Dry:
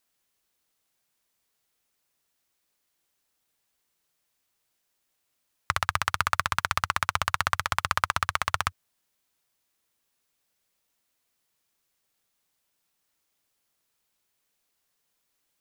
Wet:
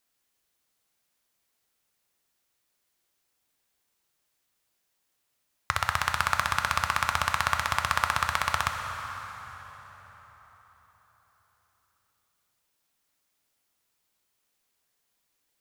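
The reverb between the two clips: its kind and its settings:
dense smooth reverb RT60 4.7 s, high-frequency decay 0.7×, DRR 4 dB
level −1 dB

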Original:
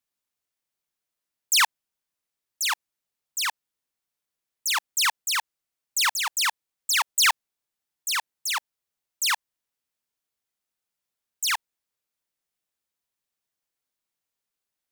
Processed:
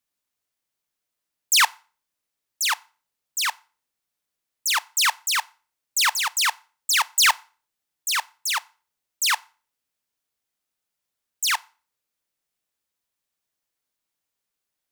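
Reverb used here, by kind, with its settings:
feedback delay network reverb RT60 0.38 s, low-frequency decay 0.85×, high-frequency decay 0.9×, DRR 18 dB
level +2.5 dB

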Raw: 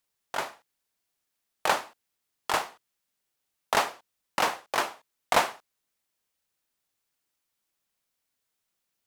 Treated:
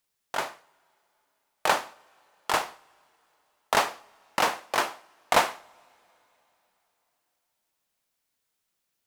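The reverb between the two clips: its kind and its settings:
coupled-rooms reverb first 0.58 s, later 3.7 s, from −19 dB, DRR 17.5 dB
level +1.5 dB

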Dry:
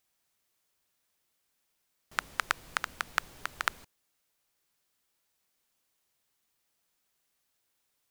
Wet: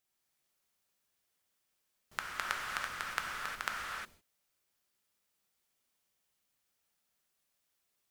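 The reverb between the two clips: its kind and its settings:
reverb whose tail is shaped and stops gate 380 ms flat, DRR −2 dB
level −7 dB

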